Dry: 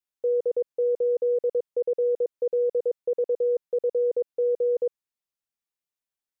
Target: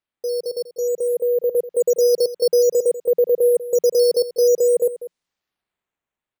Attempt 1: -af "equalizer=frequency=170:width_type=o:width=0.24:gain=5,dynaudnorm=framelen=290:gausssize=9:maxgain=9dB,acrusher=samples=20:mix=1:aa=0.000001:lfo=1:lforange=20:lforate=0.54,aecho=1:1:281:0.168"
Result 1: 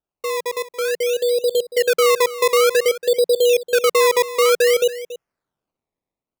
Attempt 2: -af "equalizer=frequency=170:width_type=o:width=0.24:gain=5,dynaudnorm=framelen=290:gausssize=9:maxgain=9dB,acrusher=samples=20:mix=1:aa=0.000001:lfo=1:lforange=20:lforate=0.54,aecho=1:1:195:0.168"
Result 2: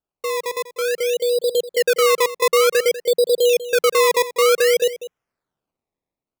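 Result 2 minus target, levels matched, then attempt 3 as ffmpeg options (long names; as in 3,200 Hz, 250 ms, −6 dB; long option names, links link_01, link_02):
sample-and-hold swept by an LFO: distortion +13 dB
-af "equalizer=frequency=170:width_type=o:width=0.24:gain=5,dynaudnorm=framelen=290:gausssize=9:maxgain=9dB,acrusher=samples=6:mix=1:aa=0.000001:lfo=1:lforange=6:lforate=0.54,aecho=1:1:195:0.168"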